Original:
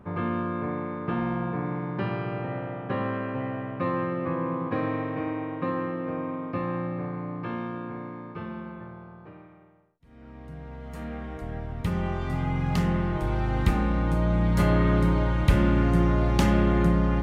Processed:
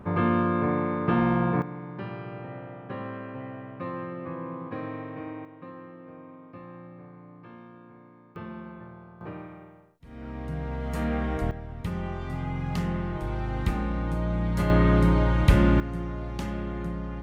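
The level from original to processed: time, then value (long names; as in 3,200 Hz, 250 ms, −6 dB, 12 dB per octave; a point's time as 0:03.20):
+5 dB
from 0:01.62 −7 dB
from 0:05.45 −14.5 dB
from 0:08.36 −3 dB
from 0:09.21 +8 dB
from 0:11.51 −4 dB
from 0:14.70 +2 dB
from 0:15.80 −11 dB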